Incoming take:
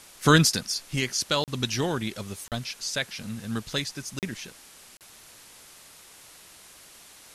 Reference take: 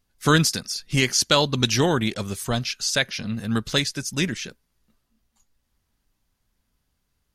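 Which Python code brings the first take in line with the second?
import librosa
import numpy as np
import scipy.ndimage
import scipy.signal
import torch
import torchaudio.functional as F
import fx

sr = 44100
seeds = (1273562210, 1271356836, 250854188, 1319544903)

y = fx.fix_interpolate(x, sr, at_s=(1.44, 2.48, 4.19, 4.97), length_ms=38.0)
y = fx.noise_reduce(y, sr, print_start_s=5.74, print_end_s=6.24, reduce_db=22.0)
y = fx.gain(y, sr, db=fx.steps((0.0, 0.0), (0.78, 7.0)))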